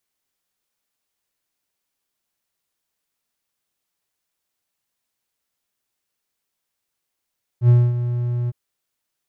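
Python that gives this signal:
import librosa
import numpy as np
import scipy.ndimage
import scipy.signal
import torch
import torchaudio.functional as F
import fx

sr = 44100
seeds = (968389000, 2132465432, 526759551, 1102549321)

y = fx.adsr_tone(sr, wave='triangle', hz=121.0, attack_ms=78.0, decay_ms=240.0, sustain_db=-11.5, held_s=0.88, release_ms=30.0, level_db=-6.0)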